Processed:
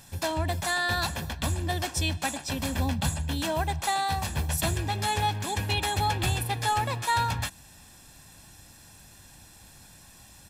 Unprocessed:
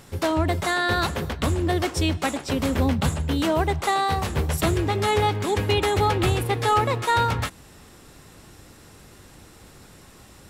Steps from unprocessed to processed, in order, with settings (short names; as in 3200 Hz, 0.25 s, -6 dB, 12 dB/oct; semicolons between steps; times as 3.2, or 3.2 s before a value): high shelf 2900 Hz +9 dB; comb 1.2 ms, depth 58%; gain -8 dB